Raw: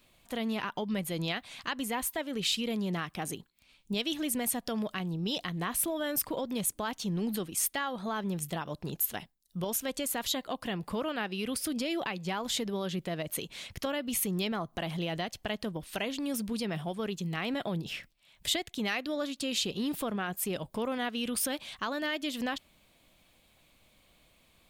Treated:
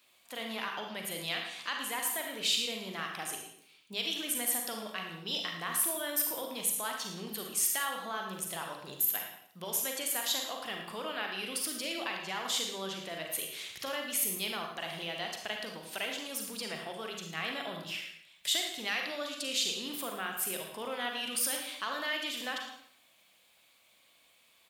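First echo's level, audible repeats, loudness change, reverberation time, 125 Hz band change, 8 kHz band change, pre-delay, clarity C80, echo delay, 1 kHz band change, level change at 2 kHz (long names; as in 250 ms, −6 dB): −11.5 dB, 1, −0.5 dB, 0.70 s, −13.0 dB, +2.0 dB, 36 ms, 6.0 dB, 112 ms, −1.5 dB, +1.0 dB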